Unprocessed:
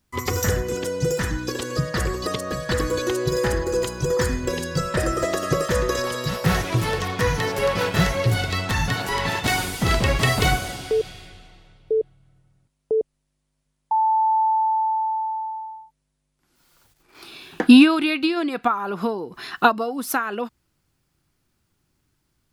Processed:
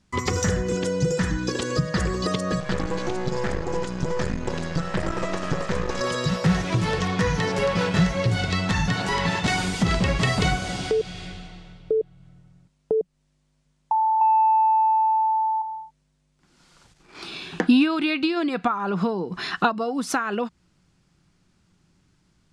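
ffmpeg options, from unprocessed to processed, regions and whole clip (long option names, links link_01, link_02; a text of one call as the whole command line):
ffmpeg -i in.wav -filter_complex "[0:a]asettb=1/sr,asplit=3[link_01][link_02][link_03];[link_01]atrim=end=2.604[link_04];[link_02]atrim=start=2.6:end=6.01,asetpts=PTS-STARTPTS,afade=type=in:duration=0.004:curve=qsin,afade=type=out:start_time=3.406:duration=0.004:curve=qsin,lowpass=frequency=4000:poles=1,aeval=exprs='max(val(0),0)':channel_layout=same[link_05];[link_03]atrim=start=6.006[link_06];[link_04][link_05]acrossfade=duration=0.004:curve1=hsin:curve2=qsin[link_07];[link_07][link_06]acrossfade=duration=0.004:curve1=qsin:curve2=hsin,asettb=1/sr,asplit=3[link_08][link_09][link_10];[link_08]atrim=end=14.214[link_11];[link_09]atrim=start=14.21:end=15.62,asetpts=PTS-STARTPTS,afade=type=in:duration=0.004:curve=qsin,afade=type=out:start_time=1.406:duration=0.004:curve=qsin,highpass=frequency=300:width=0.5412,highpass=frequency=300:width=1.3066,equalizer=frequency=9800:width=7:gain=-3,acontrast=57[link_12];[link_10]atrim=start=15.616[link_13];[link_11][link_12]acrossfade=duration=0.004:curve1=hsin:curve2=qsin[link_14];[link_14][link_13]acrossfade=duration=0.004:curve1=qsin:curve2=hsin,lowpass=frequency=8200:width=0.5412,lowpass=frequency=8200:width=1.3066,equalizer=frequency=180:width=4.5:gain=10.5,acompressor=threshold=-31dB:ratio=2,volume=5.5dB" out.wav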